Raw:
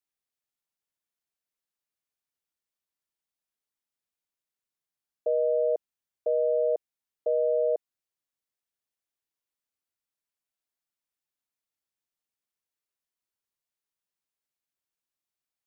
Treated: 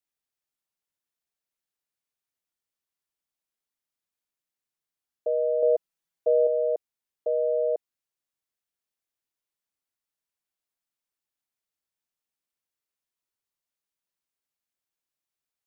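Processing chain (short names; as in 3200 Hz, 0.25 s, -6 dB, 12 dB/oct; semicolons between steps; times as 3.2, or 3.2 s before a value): 5.62–6.47 comb 6.1 ms, depth 93%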